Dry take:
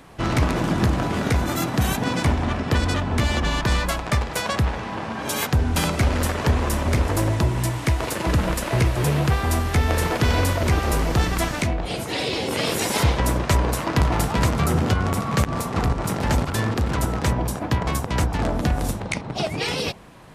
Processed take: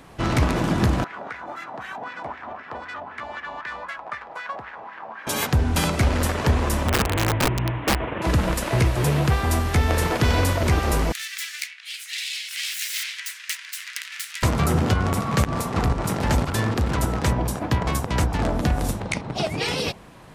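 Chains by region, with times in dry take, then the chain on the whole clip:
1.04–5.27 high shelf 11000 Hz -4.5 dB + wah 3.9 Hz 700–1900 Hz, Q 3
6.88–8.22 CVSD 16 kbps + wrapped overs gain 15 dB
11.12–14.43 self-modulated delay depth 0.27 ms + steep high-pass 1800 Hz
whole clip: dry

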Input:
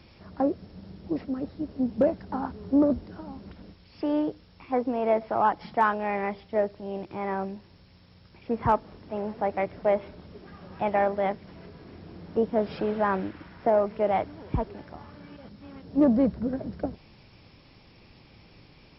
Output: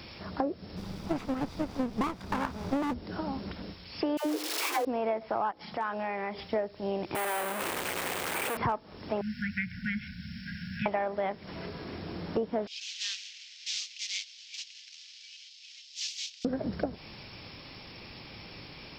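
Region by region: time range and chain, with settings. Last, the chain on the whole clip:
0.76–2.93 minimum comb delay 0.84 ms + added noise brown -52 dBFS
4.17–4.85 zero-crossing step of -32.5 dBFS + brick-wall FIR high-pass 270 Hz + dispersion lows, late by 95 ms, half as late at 660 Hz
5.51–6.39 HPF 51 Hz + notches 60/120/180/240/300/360/420/480/540 Hz + compressor 3:1, threshold -40 dBFS
7.15–8.57 infinite clipping + three-band isolator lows -19 dB, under 300 Hz, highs -19 dB, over 2900 Hz + careless resampling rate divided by 4×, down none, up hold
9.21–10.86 brick-wall FIR band-stop 250–1400 Hz + bell 3600 Hz -6 dB 1 oct + three-band squash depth 40%
12.67–16.45 CVSD 32 kbps + steep high-pass 2600 Hz
whole clip: tilt +1.5 dB/oct; compressor 8:1, threshold -36 dBFS; gain +8.5 dB

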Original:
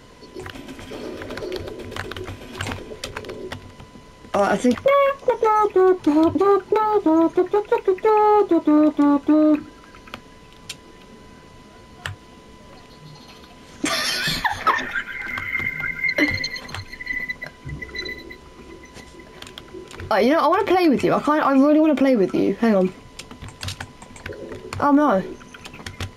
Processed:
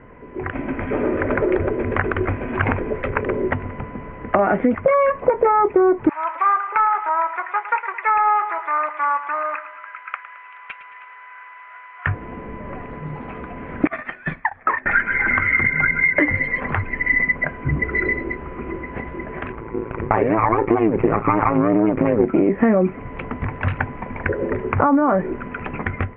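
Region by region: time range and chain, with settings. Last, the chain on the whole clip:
6.09–12.07 HPF 1100 Hz 24 dB/oct + hard clip -20 dBFS + feedback echo 0.109 s, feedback 46%, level -13 dB
13.87–14.86 gate -21 dBFS, range -28 dB + compressor, threshold -26 dBFS
19.52–22.26 ripple EQ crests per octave 0.71, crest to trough 9 dB + AM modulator 110 Hz, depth 85% + running maximum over 9 samples
whole clip: compressor, threshold -25 dBFS; steep low-pass 2300 Hz 48 dB/oct; AGC gain up to 10 dB; gain +2 dB

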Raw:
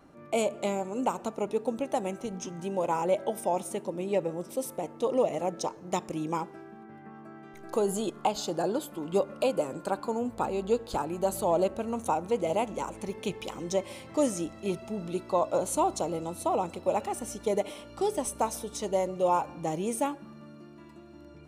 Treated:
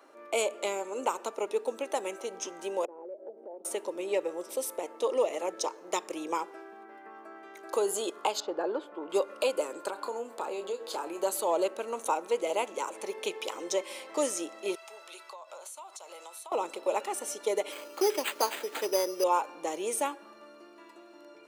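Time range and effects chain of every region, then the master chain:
2.85–3.65 Butterworth band-pass 320 Hz, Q 1 + compressor 4:1, threshold -43 dBFS
8.4–9.1 LPF 1900 Hz + mismatched tape noise reduction decoder only
9.9–11.23 compressor 5:1, threshold -31 dBFS + doubler 30 ms -9.5 dB
14.75–16.52 HPF 1100 Hz + compressor 20:1, threshold -44 dBFS
17.72–19.24 steep low-pass 9700 Hz 48 dB/oct + bell 350 Hz +4 dB + careless resampling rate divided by 8×, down none, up hold
whole clip: HPF 390 Hz 24 dB/oct; notch 740 Hz, Q 12; dynamic EQ 660 Hz, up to -6 dB, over -39 dBFS, Q 1.4; gain +3.5 dB

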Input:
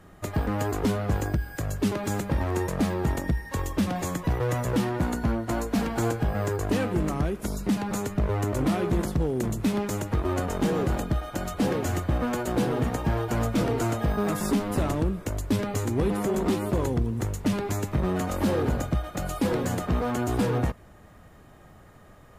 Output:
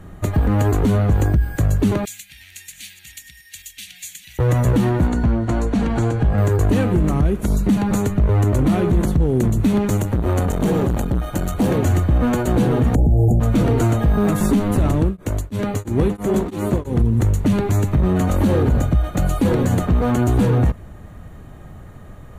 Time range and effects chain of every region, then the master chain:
2.05–4.39 reverse delay 0.393 s, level -13 dB + inverse Chebyshev high-pass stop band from 1200 Hz
5.07–6.38 LPF 7500 Hz + compressor 4:1, threshold -26 dBFS
9.97–11.78 high shelf 7600 Hz +7 dB + core saturation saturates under 440 Hz
12.95–13.4 brick-wall FIR band-stop 860–6500 Hz + low shelf 470 Hz +10 dB + three-band squash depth 70%
15.01–17.02 low shelf 130 Hz -8 dB + echo 0.835 s -12 dB + beating tremolo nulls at 3 Hz
whole clip: low shelf 240 Hz +11 dB; notch 5100 Hz, Q 5.8; maximiser +13.5 dB; gain -8 dB

